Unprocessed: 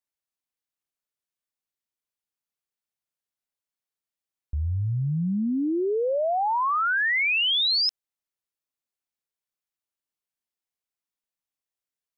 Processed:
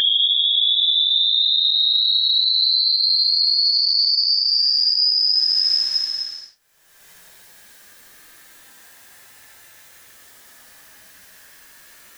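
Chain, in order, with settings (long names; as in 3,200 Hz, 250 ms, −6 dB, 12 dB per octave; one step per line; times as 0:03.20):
backwards echo 61 ms −8 dB
extreme stretch with random phases 16×, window 0.10 s, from 0:07.53
upward compression, threshold −27 dBFS
brickwall limiter −17.5 dBFS, peak gain reduction 8 dB
parametric band 1,700 Hz +12 dB 0.29 octaves
level +7.5 dB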